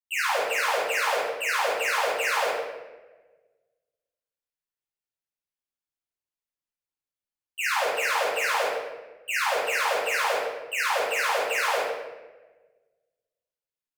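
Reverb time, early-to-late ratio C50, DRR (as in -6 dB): 1.2 s, -0.5 dB, -11.0 dB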